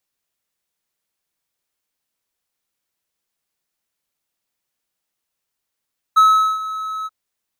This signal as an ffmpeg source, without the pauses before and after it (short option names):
-f lavfi -i "aevalsrc='0.562*(1-4*abs(mod(1290*t+0.25,1)-0.5))':d=0.933:s=44100,afade=t=in:d=0.017,afade=t=out:st=0.017:d=0.408:silence=0.158,afade=t=out:st=0.9:d=0.033"